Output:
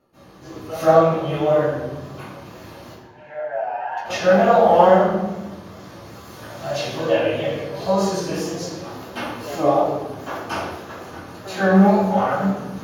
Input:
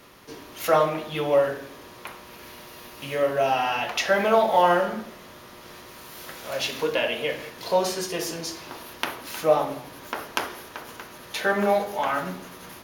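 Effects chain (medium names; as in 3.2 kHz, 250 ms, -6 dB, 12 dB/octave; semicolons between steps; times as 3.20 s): chorus 0.32 Hz, delay 15.5 ms, depth 7.1 ms; wow and flutter 120 cents; in parallel at -10 dB: hard clipper -17.5 dBFS, distortion -15 dB; 2.79–3.92 s: on the sum: two resonant band-passes 1.2 kHz, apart 0.83 oct; reverberation RT60 1.1 s, pre-delay 128 ms, DRR -19 dB; trim -18 dB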